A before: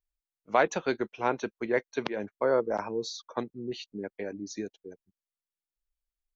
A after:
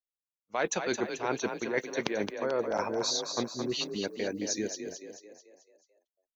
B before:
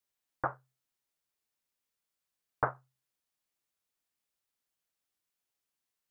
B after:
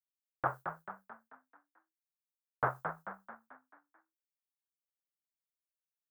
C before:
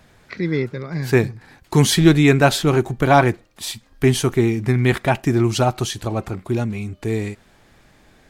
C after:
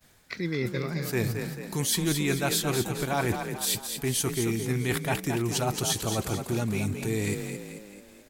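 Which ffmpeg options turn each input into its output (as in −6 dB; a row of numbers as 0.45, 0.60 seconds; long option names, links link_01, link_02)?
-filter_complex "[0:a]aemphasis=mode=production:type=75kf,agate=range=-33dB:threshold=-40dB:ratio=3:detection=peak,areverse,acompressor=threshold=-31dB:ratio=5,areverse,asplit=7[link_01][link_02][link_03][link_04][link_05][link_06][link_07];[link_02]adelay=219,afreqshift=32,volume=-7dB[link_08];[link_03]adelay=438,afreqshift=64,volume=-13.2dB[link_09];[link_04]adelay=657,afreqshift=96,volume=-19.4dB[link_10];[link_05]adelay=876,afreqshift=128,volume=-25.6dB[link_11];[link_06]adelay=1095,afreqshift=160,volume=-31.8dB[link_12];[link_07]adelay=1314,afreqshift=192,volume=-38dB[link_13];[link_01][link_08][link_09][link_10][link_11][link_12][link_13]amix=inputs=7:normalize=0,volume=3.5dB"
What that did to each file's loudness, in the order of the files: −1.0, −2.0, −9.5 LU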